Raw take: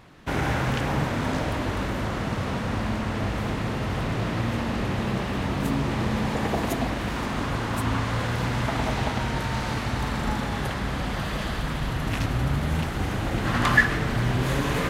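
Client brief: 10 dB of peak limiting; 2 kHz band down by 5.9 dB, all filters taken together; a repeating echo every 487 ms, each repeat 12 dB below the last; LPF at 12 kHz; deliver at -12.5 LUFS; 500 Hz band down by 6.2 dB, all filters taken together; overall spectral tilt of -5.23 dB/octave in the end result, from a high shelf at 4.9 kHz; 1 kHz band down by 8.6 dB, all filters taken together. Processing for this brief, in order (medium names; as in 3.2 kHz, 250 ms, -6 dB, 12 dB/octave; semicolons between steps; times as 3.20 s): low-pass 12 kHz; peaking EQ 500 Hz -5.5 dB; peaking EQ 1 kHz -8.5 dB; peaking EQ 2 kHz -5 dB; treble shelf 4.9 kHz +6.5 dB; peak limiter -21 dBFS; feedback delay 487 ms, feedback 25%, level -12 dB; trim +18 dB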